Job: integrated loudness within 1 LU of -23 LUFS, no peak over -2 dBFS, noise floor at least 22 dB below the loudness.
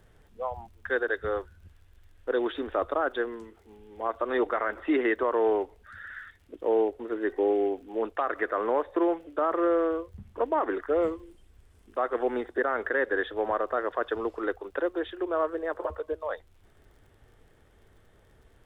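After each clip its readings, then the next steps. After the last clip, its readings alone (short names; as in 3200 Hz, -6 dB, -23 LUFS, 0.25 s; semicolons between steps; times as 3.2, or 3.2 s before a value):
ticks 41/s; loudness -29.0 LUFS; peak -16.0 dBFS; loudness target -23.0 LUFS
-> de-click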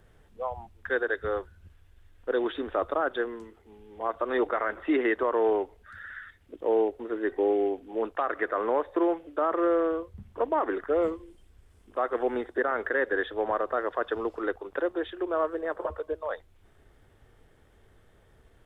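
ticks 0.21/s; loudness -29.0 LUFS; peak -16.0 dBFS; loudness target -23.0 LUFS
-> gain +6 dB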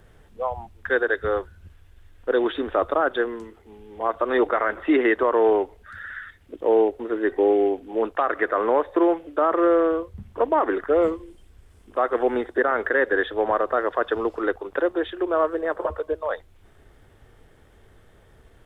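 loudness -23.0 LUFS; peak -10.0 dBFS; noise floor -54 dBFS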